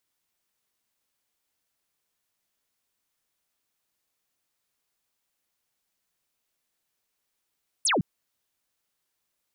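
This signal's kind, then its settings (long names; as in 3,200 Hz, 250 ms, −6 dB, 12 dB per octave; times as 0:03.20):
single falling chirp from 11,000 Hz, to 130 Hz, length 0.16 s sine, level −20.5 dB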